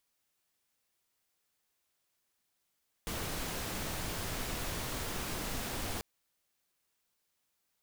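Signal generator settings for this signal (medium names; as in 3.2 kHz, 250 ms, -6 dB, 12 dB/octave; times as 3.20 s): noise pink, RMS -37.5 dBFS 2.94 s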